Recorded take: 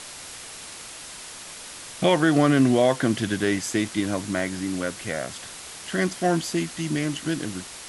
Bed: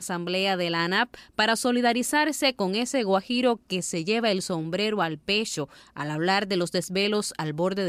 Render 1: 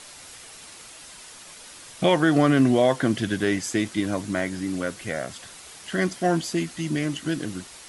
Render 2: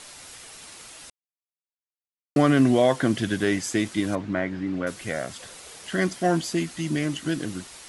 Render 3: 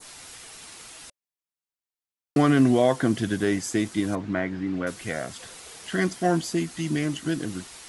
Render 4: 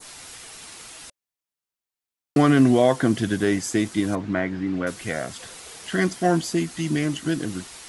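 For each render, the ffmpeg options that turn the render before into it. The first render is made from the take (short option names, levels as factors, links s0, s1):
-af "afftdn=nr=6:nf=-40"
-filter_complex "[0:a]asettb=1/sr,asplit=3[s0][s1][s2];[s0]atrim=end=4.154[s3];[s1]atrim=start=4.15:end=4.87,asetpts=PTS-STARTPTS,afade=t=in:d=0.004:c=qsin,afade=t=out:st=0.716:d=0.004:c=qsin,lowpass=2500[s4];[s2]atrim=start=4.866[s5];[s3][s4]acrossfade=d=0.004:c1=hsin:c2=qsin[s6];[s6][s5]acrossfade=d=0.004:c1=qsin:c2=hsin,asettb=1/sr,asplit=3[s7][s8][s9];[s7]atrim=end=5.404[s10];[s8]atrim=start=5.4:end=5.88,asetpts=PTS-STARTPTS,afade=t=in:d=0.004:c=qsin,afade=t=out:st=0.476:d=0.004:c=qsin,equalizer=f=500:t=o:w=0.54:g=8[s11];[s9]atrim=start=5.876[s12];[s10][s11]acrossfade=d=0.004:c1=hsin:c2=qsin[s13];[s13][s12]acrossfade=d=0.004:c1=qsin:c2=hsin,asplit=3[s14][s15][s16];[s14]atrim=end=1.1,asetpts=PTS-STARTPTS,afade=t=out:st=1.096:d=0.004:c=hsin[s17];[s15]atrim=start=1.1:end=2.36,asetpts=PTS-STARTPTS,volume=0[s18];[s16]atrim=start=2.36,asetpts=PTS-STARTPTS,afade=t=in:d=0.004:c=hsin[s19];[s17][s18][s19]concat=n=3:v=0:a=1"
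-af "bandreject=f=570:w=12,adynamicequalizer=threshold=0.0112:dfrequency=2700:dqfactor=0.75:tfrequency=2700:tqfactor=0.75:attack=5:release=100:ratio=0.375:range=2.5:mode=cutabove:tftype=bell"
-af "volume=1.33"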